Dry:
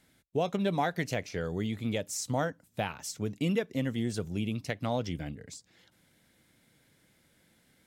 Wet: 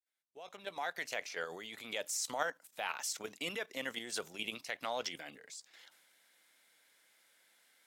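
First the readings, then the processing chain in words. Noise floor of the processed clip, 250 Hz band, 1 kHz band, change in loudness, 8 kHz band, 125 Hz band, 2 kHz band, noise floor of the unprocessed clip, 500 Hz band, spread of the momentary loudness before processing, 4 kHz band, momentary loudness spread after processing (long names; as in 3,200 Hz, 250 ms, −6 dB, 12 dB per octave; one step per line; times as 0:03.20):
−72 dBFS, −19.0 dB, −5.5 dB, −7.0 dB, −0.5 dB, −27.5 dB, −0.5 dB, −68 dBFS, −9.5 dB, 7 LU, +0.5 dB, 14 LU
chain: fade in at the beginning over 1.86 s
high-pass filter 800 Hz 12 dB per octave
output level in coarse steps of 11 dB
transient designer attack −2 dB, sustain +3 dB
level +7.5 dB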